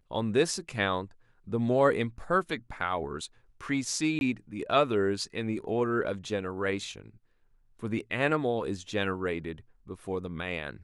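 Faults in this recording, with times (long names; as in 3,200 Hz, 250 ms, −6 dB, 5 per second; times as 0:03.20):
0:04.19–0:04.21: drop-out 21 ms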